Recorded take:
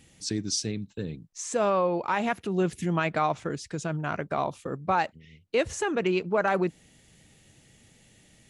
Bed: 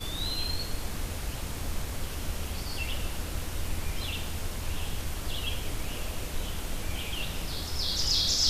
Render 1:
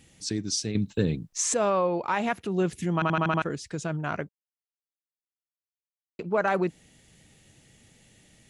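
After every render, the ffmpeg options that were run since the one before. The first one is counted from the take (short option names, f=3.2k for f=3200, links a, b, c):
-filter_complex "[0:a]asplit=11[a][b][c][d][e][f][g][h][i][j][k];[a]atrim=end=0.752[l];[b]atrim=start=0.748:end=1.542,asetpts=PTS-STARTPTS,volume=9dB[m];[c]atrim=start=1.538:end=3.022[n];[d]atrim=start=2.938:end=3.022[o];[e]atrim=start=2.938:end=3.022[p];[f]atrim=start=2.938:end=3.022[q];[g]atrim=start=2.938:end=3.022[r];[h]atrim=start=2.938:end=3.022[s];[i]atrim=start=3.418:end=4.29,asetpts=PTS-STARTPTS,afade=t=out:st=0.868:d=0.004:c=hsin[t];[j]atrim=start=4.29:end=6.19,asetpts=PTS-STARTPTS,volume=0[u];[k]atrim=start=6.19,asetpts=PTS-STARTPTS,afade=t=in:d=0.004:c=hsin[v];[l][m]acrossfade=d=0.004:c1=hsin:c2=hsin[w];[w][n]acrossfade=d=0.004:c1=hsin:c2=hsin[x];[x][o]acrossfade=d=0.004:c1=hsin:c2=hsin[y];[y][p]acrossfade=d=0.004:c1=hsin:c2=hsin[z];[z][q]acrossfade=d=0.004:c1=hsin:c2=hsin[aa];[aa][r]acrossfade=d=0.004:c1=hsin:c2=hsin[ab];[ab][s]acrossfade=d=0.004:c1=hsin:c2=hsin[ac];[t][u][v]concat=n=3:v=0:a=1[ad];[ac][ad]acrossfade=d=0.004:c1=hsin:c2=hsin"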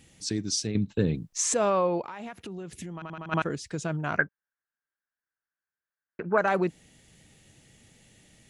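-filter_complex "[0:a]asettb=1/sr,asplit=3[a][b][c];[a]atrim=end=0.674[d];[b]atrim=start=0.67:end=1.15,asetpts=PTS-STARTPTS,afade=t=in:d=0.004:c=qsin,afade=t=out:st=0.476:d=0.004:c=qsin,lowpass=f=3k:p=1[e];[c]atrim=start=1.146[f];[d][e]acrossfade=d=0.004:c1=hsin:c2=qsin[g];[g][f]acrossfade=d=0.004:c1=qsin:c2=hsin,asplit=3[h][i][j];[h]afade=t=out:st=2.01:d=0.02[k];[i]acompressor=threshold=-35dB:ratio=12:attack=3.2:release=140:knee=1:detection=peak,afade=t=in:st=2.01:d=0.02,afade=t=out:st=3.31:d=0.02[l];[j]afade=t=in:st=3.31:d=0.02[m];[k][l][m]amix=inputs=3:normalize=0,asettb=1/sr,asplit=3[n][o][p];[n]atrim=end=4.184[q];[o]atrim=start=4.18:end=6.38,asetpts=PTS-STARTPTS,afade=t=in:d=0.004:c=qsin,afade=t=out:st=2.196:d=0.004:c=qsin,lowpass=f=1.6k:t=q:w=10[r];[p]atrim=start=6.376[s];[q][r]acrossfade=d=0.004:c1=hsin:c2=qsin[t];[t][s]acrossfade=d=0.004:c1=qsin:c2=hsin"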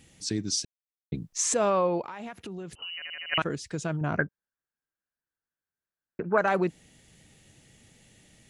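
-filter_complex "[0:a]asettb=1/sr,asplit=3[a][b][c];[a]atrim=end=2.754[d];[b]atrim=start=2.75:end=3.38,asetpts=PTS-STARTPTS,afade=t=in:d=0.004:c=qsin,afade=t=out:st=0.626:d=0.004:c=qsin,lowpass=f=2.6k:t=q:w=0.5098,lowpass=f=2.6k:t=q:w=0.6013,lowpass=f=2.6k:t=q:w=0.9,lowpass=f=2.6k:t=q:w=2.563,afreqshift=-3100[e];[c]atrim=start=3.376[f];[d][e]acrossfade=d=0.004:c1=hsin:c2=qsin[g];[g][f]acrossfade=d=0.004:c1=qsin:c2=hsin,asettb=1/sr,asplit=3[h][i][j];[h]atrim=end=4.014[k];[i]atrim=start=4.01:end=6.24,asetpts=PTS-STARTPTS,afade=t=in:d=0.004:c=qsin,afade=t=out:st=2.226:d=0.004:c=qsin,tiltshelf=f=710:g=6[l];[j]atrim=start=6.236[m];[k][l]acrossfade=d=0.004:c1=hsin:c2=qsin[n];[n][m]acrossfade=d=0.004:c1=qsin:c2=hsin,asplit=3[o][p][q];[o]atrim=end=0.65,asetpts=PTS-STARTPTS,afade=t=out:st=0.646:d=0.004:c=hsin[r];[p]atrim=start=0.65:end=1.12,asetpts=PTS-STARTPTS,volume=0[s];[q]atrim=start=1.12,asetpts=PTS-STARTPTS,afade=t=in:d=0.004:c=hsin[t];[r][s][t]concat=n=3:v=0:a=1"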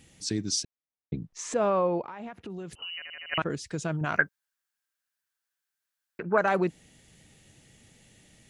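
-filter_complex "[0:a]asettb=1/sr,asplit=3[a][b][c];[a]atrim=end=0.634[d];[b]atrim=start=0.63:end=2.5,asetpts=PTS-STARTPTS,afade=t=in:d=0.004:c=qsin,afade=t=out:st=1.866:d=0.004:c=qsin,lowpass=f=1.8k:p=1[e];[c]atrim=start=2.496[f];[d][e]acrossfade=d=0.004:c1=hsin:c2=qsin[g];[g][f]acrossfade=d=0.004:c1=qsin:c2=hsin,asplit=3[h][i][j];[h]afade=t=out:st=3.01:d=0.02[k];[i]aemphasis=mode=reproduction:type=75kf,afade=t=in:st=3.01:d=0.02,afade=t=out:st=3.48:d=0.02[l];[j]afade=t=in:st=3.48:d=0.02[m];[k][l][m]amix=inputs=3:normalize=0,asplit=3[n][o][p];[n]afade=t=out:st=4.04:d=0.02[q];[o]tiltshelf=f=760:g=-9,afade=t=in:st=4.04:d=0.02,afade=t=out:st=6.22:d=0.02[r];[p]afade=t=in:st=6.22:d=0.02[s];[q][r][s]amix=inputs=3:normalize=0"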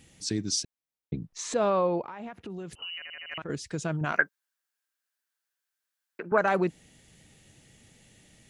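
-filter_complex "[0:a]asettb=1/sr,asplit=3[a][b][c];[a]atrim=end=1.364[d];[b]atrim=start=1.36:end=1.96,asetpts=PTS-STARTPTS,afade=t=in:d=0.004:c=qsin,afade=t=out:st=0.596:d=0.004:c=qsin,equalizer=f=4k:w=3:g=9.5[e];[c]atrim=start=1.956[f];[d][e]acrossfade=d=0.004:c1=hsin:c2=qsin[g];[g][f]acrossfade=d=0.004:c1=qsin:c2=hsin,asettb=1/sr,asplit=3[h][i][j];[h]atrim=end=2.964[k];[i]atrim=start=2.96:end=3.49,asetpts=PTS-STARTPTS,afade=t=in:d=0.004:c=qsin,afade=t=out:st=0.526:d=0.004:c=qsin,acompressor=threshold=-34dB:ratio=6:attack=3.2:release=140:knee=1:detection=peak[l];[j]atrim=start=3.486[m];[k][l]acrossfade=d=0.004:c1=hsin:c2=qsin[n];[n][m]acrossfade=d=0.004:c1=qsin:c2=hsin,asettb=1/sr,asplit=3[o][p][q];[o]atrim=end=4.124[r];[p]atrim=start=4.12:end=6.32,asetpts=PTS-STARTPTS,afade=t=in:d=0.004:c=qsin,afade=t=out:st=2.196:d=0.004:c=qsin,highpass=270[s];[q]atrim=start=6.316[t];[r][s]acrossfade=d=0.004:c1=hsin:c2=qsin[u];[u][t]acrossfade=d=0.004:c1=qsin:c2=hsin"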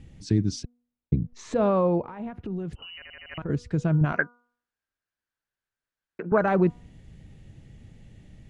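-af "aemphasis=mode=reproduction:type=riaa,bandreject=f=241.7:t=h:w=4,bandreject=f=483.4:t=h:w=4,bandreject=f=725.1:t=h:w=4,bandreject=f=966.8:t=h:w=4,bandreject=f=1.2085k:t=h:w=4,bandreject=f=1.4502k:t=h:w=4"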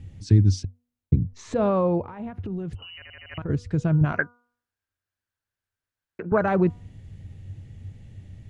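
-af "equalizer=f=94:w=3.1:g=15"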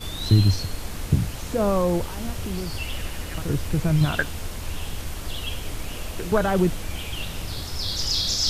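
-filter_complex "[1:a]volume=2dB[a];[0:a][a]amix=inputs=2:normalize=0"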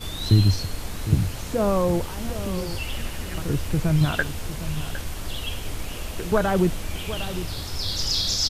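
-filter_complex "[0:a]asplit=2[a][b];[b]adelay=758,volume=-12dB,highshelf=f=4k:g=-17.1[c];[a][c]amix=inputs=2:normalize=0"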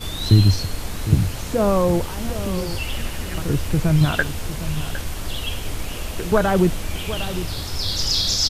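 -af "volume=3.5dB"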